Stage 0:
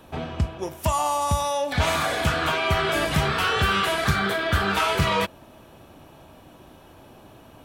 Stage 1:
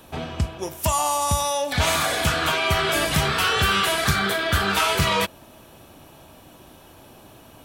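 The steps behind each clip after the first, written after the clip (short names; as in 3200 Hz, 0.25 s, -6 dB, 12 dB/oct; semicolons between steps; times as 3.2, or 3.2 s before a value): high shelf 3700 Hz +9 dB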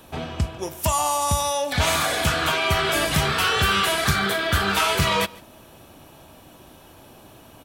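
echo 0.146 s -23 dB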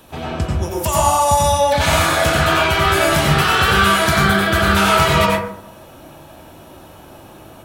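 plate-style reverb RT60 0.68 s, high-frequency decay 0.3×, pre-delay 80 ms, DRR -4 dB; gain +1.5 dB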